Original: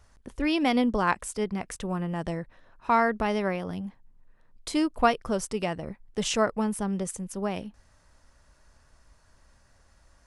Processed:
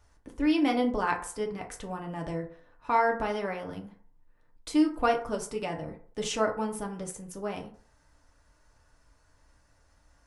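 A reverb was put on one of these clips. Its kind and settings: FDN reverb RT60 0.5 s, low-frequency decay 0.75×, high-frequency decay 0.45×, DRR 1 dB; trim -5.5 dB

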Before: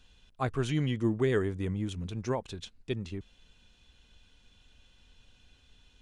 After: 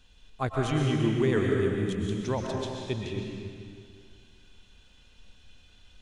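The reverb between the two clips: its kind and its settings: algorithmic reverb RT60 2.1 s, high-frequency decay 0.95×, pre-delay 85 ms, DRR -0.5 dB; trim +1 dB

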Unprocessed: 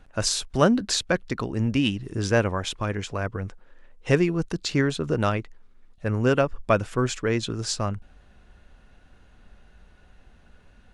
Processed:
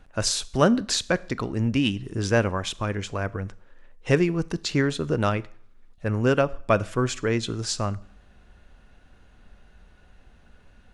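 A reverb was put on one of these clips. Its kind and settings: Schroeder reverb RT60 0.55 s, combs from 27 ms, DRR 19.5 dB

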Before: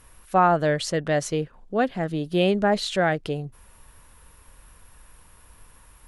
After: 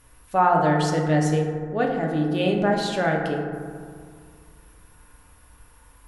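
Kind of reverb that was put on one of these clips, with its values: FDN reverb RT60 2 s, low-frequency decay 1.25×, high-frequency decay 0.3×, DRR -0.5 dB; trim -3.5 dB

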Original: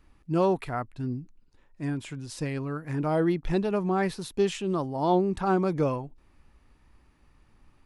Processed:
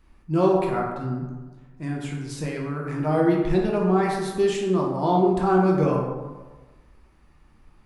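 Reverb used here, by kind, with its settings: plate-style reverb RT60 1.3 s, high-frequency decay 0.45×, DRR -2 dB

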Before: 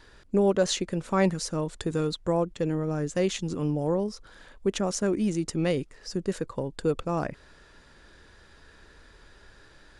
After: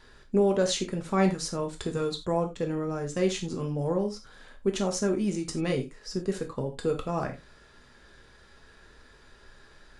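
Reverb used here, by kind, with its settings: gated-style reverb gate 120 ms falling, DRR 3 dB; trim -2.5 dB

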